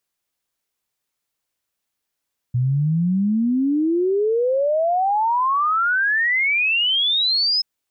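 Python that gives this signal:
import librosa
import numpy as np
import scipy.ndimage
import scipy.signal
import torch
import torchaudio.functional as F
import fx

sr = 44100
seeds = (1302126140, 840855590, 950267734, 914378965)

y = fx.ess(sr, length_s=5.08, from_hz=120.0, to_hz=5200.0, level_db=-16.0)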